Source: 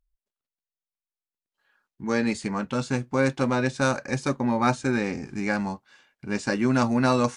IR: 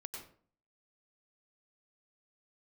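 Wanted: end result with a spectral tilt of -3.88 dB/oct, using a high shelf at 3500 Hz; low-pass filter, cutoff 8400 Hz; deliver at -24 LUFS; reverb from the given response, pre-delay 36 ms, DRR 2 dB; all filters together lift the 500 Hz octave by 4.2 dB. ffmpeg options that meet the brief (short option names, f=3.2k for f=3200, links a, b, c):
-filter_complex "[0:a]lowpass=8.4k,equalizer=f=500:t=o:g=5,highshelf=f=3.5k:g=-3.5,asplit=2[a][b];[1:a]atrim=start_sample=2205,adelay=36[c];[b][c]afir=irnorm=-1:irlink=0,volume=1dB[d];[a][d]amix=inputs=2:normalize=0,volume=-2dB"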